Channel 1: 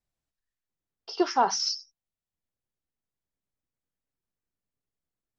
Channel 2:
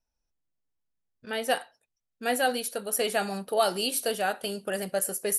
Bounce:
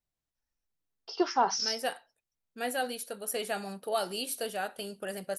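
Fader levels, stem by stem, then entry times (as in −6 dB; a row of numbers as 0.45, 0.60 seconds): −3.0, −6.5 decibels; 0.00, 0.35 seconds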